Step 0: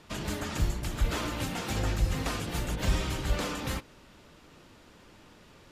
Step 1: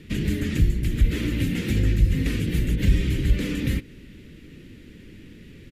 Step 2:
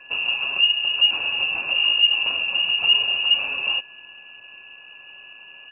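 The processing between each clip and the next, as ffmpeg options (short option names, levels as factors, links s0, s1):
-filter_complex "[0:a]firequalizer=gain_entry='entry(260,0);entry(450,-7);entry(700,-27);entry(1100,-26);entry(1900,-5);entry(5200,-15);entry(8100,-13);entry(12000,-9)':delay=0.05:min_phase=1,asplit=2[s0][s1];[s1]acompressor=threshold=0.0178:ratio=6,volume=1.33[s2];[s0][s2]amix=inputs=2:normalize=0,volume=2"
-af "lowpass=f=2500:t=q:w=0.5098,lowpass=f=2500:t=q:w=0.6013,lowpass=f=2500:t=q:w=0.9,lowpass=f=2500:t=q:w=2.563,afreqshift=-2900,aeval=exprs='val(0)+0.00355*sin(2*PI*1700*n/s)':c=same"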